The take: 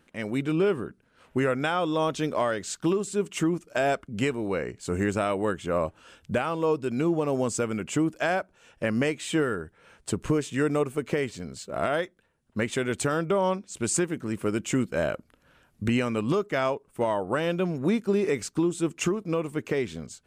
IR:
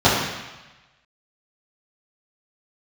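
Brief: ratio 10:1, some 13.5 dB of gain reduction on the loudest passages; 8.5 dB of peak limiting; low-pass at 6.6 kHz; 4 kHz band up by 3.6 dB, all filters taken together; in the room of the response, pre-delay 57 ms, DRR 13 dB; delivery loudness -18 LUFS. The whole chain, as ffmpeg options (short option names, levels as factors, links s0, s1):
-filter_complex "[0:a]lowpass=6600,equalizer=f=4000:t=o:g=5.5,acompressor=threshold=0.02:ratio=10,alimiter=level_in=1.88:limit=0.0631:level=0:latency=1,volume=0.531,asplit=2[s0][s1];[1:a]atrim=start_sample=2205,adelay=57[s2];[s1][s2]afir=irnorm=-1:irlink=0,volume=0.0133[s3];[s0][s3]amix=inputs=2:normalize=0,volume=12.6"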